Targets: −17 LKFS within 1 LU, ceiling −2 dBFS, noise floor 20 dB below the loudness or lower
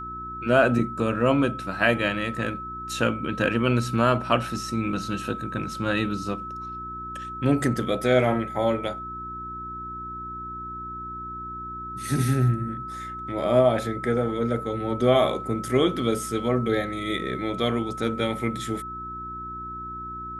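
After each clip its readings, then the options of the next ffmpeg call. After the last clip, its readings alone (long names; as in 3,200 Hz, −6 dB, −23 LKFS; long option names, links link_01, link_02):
mains hum 60 Hz; hum harmonics up to 360 Hz; level of the hum −41 dBFS; interfering tone 1,300 Hz; level of the tone −33 dBFS; integrated loudness −26.0 LKFS; sample peak −6.0 dBFS; target loudness −17.0 LKFS
→ -af "bandreject=frequency=60:width_type=h:width=4,bandreject=frequency=120:width_type=h:width=4,bandreject=frequency=180:width_type=h:width=4,bandreject=frequency=240:width_type=h:width=4,bandreject=frequency=300:width_type=h:width=4,bandreject=frequency=360:width_type=h:width=4"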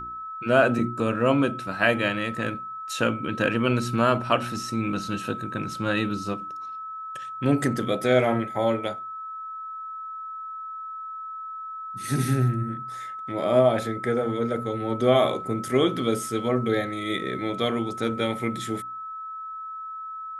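mains hum none found; interfering tone 1,300 Hz; level of the tone −33 dBFS
→ -af "bandreject=frequency=1300:width=30"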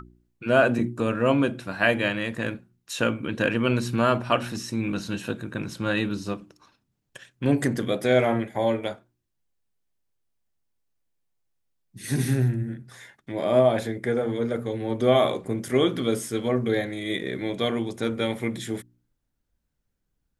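interfering tone none found; integrated loudness −25.5 LKFS; sample peak −6.5 dBFS; target loudness −17.0 LKFS
→ -af "volume=8.5dB,alimiter=limit=-2dB:level=0:latency=1"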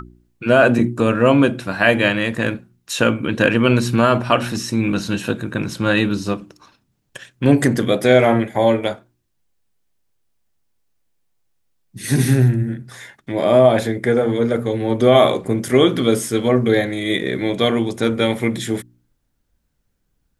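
integrated loudness −17.5 LKFS; sample peak −2.0 dBFS; background noise floor −69 dBFS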